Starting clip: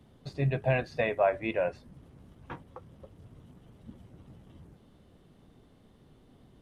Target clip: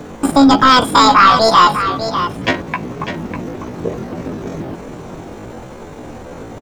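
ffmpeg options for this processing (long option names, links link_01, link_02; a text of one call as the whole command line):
ffmpeg -i in.wav -filter_complex "[0:a]asetrate=88200,aresample=44100,atempo=0.5,apsyclip=30.5dB,highshelf=frequency=5200:gain=-5.5,asplit=2[link_01][link_02];[link_02]aecho=0:1:599:0.335[link_03];[link_01][link_03]amix=inputs=2:normalize=0,volume=-3.5dB" out.wav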